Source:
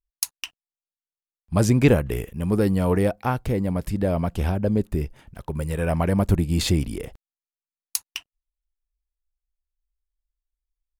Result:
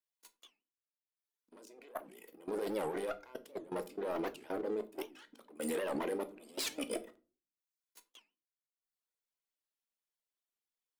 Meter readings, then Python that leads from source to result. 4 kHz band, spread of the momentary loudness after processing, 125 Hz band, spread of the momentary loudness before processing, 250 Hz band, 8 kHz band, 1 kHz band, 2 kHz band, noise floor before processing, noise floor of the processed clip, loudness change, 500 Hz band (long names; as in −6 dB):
−13.0 dB, 19 LU, −36.5 dB, 15 LU, −19.5 dB, −15.0 dB, −13.0 dB, −14.0 dB, below −85 dBFS, below −85 dBFS, −16.5 dB, −12.5 dB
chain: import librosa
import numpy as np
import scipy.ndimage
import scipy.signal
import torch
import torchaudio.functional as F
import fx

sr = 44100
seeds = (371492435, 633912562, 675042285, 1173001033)

y = fx.lower_of_two(x, sr, delay_ms=2.0)
y = fx.dereverb_blind(y, sr, rt60_s=0.76)
y = fx.peak_eq(y, sr, hz=3300.0, db=3.0, octaves=0.39)
y = fx.over_compress(y, sr, threshold_db=-31.0, ratio=-1.0)
y = fx.auto_swell(y, sr, attack_ms=191.0)
y = scipy.signal.sosfilt(scipy.signal.ellip(4, 1.0, 40, 220.0, 'highpass', fs=sr, output='sos'), y)
y = 10.0 ** (-28.0 / 20.0) * np.tanh(y / 10.0 ** (-28.0 / 20.0))
y = fx.level_steps(y, sr, step_db=20)
y = fx.room_shoebox(y, sr, seeds[0], volume_m3=180.0, walls='furnished', distance_m=0.58)
y = fx.record_warp(y, sr, rpm=78.0, depth_cents=250.0)
y = y * librosa.db_to_amplitude(3.0)